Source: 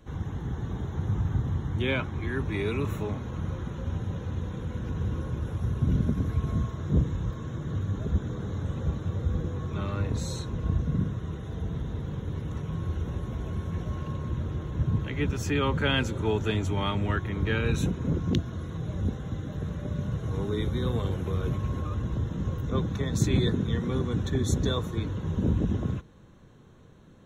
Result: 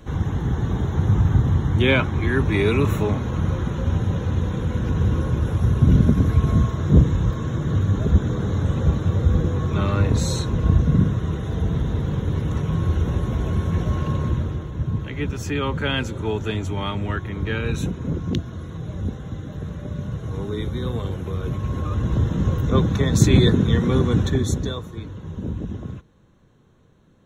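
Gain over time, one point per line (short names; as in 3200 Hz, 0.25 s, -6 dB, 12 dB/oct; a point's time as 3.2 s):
14.26 s +10 dB
14.72 s +2 dB
21.42 s +2 dB
22.19 s +9.5 dB
24.2 s +9.5 dB
24.84 s -3 dB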